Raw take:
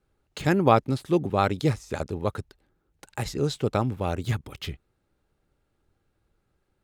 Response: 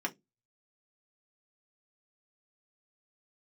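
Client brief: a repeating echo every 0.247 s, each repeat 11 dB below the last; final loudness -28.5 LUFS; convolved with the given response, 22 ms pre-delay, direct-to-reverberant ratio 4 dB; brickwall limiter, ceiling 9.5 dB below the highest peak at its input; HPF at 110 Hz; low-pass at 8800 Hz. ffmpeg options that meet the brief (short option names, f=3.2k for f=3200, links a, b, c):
-filter_complex "[0:a]highpass=110,lowpass=8.8k,alimiter=limit=-13.5dB:level=0:latency=1,aecho=1:1:247|494|741:0.282|0.0789|0.0221,asplit=2[a][b];[1:a]atrim=start_sample=2205,adelay=22[c];[b][c]afir=irnorm=-1:irlink=0,volume=-8.5dB[d];[a][d]amix=inputs=2:normalize=0,volume=-1dB"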